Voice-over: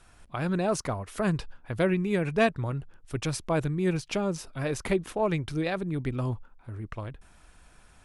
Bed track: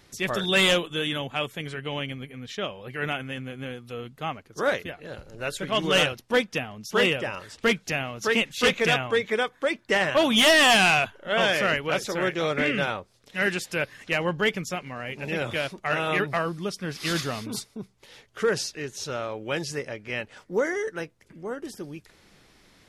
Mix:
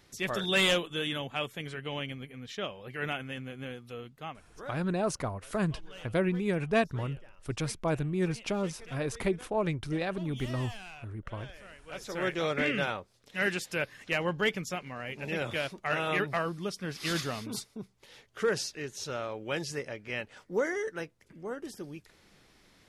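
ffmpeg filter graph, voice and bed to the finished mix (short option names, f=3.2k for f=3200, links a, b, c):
-filter_complex "[0:a]adelay=4350,volume=-3dB[a];[1:a]volume=18dB,afade=t=out:st=3.82:d=0.98:silence=0.0749894,afade=t=in:st=11.85:d=0.45:silence=0.0707946[b];[a][b]amix=inputs=2:normalize=0"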